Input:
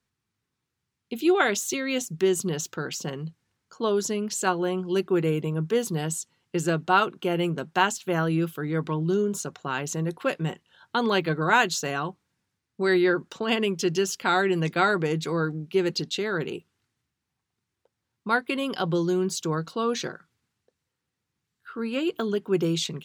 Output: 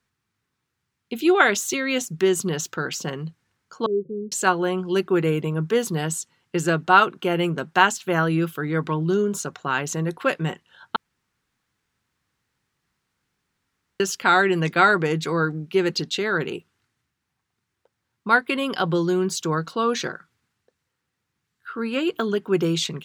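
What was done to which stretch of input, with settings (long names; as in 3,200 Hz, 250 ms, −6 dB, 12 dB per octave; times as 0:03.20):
0:03.86–0:04.32: Chebyshev low-pass with heavy ripple 550 Hz, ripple 9 dB
0:10.96–0:14.00: fill with room tone
0:18.43–0:19.26: notch filter 6,200 Hz, Q 10
whole clip: parametric band 1,500 Hz +4.5 dB 1.5 octaves; level +2.5 dB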